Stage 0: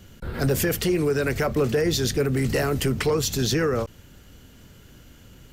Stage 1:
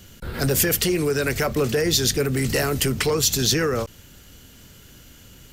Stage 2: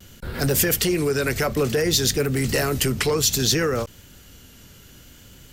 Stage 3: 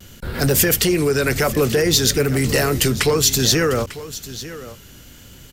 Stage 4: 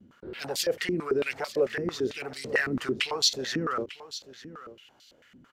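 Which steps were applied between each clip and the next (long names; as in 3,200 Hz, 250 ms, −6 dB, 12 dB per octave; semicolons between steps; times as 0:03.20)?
high-shelf EQ 2,500 Hz +8.5 dB
pitch vibrato 0.6 Hz 27 cents
single-tap delay 897 ms −15.5 dB; level +4 dB
band-pass on a step sequencer 9 Hz 240–4,200 Hz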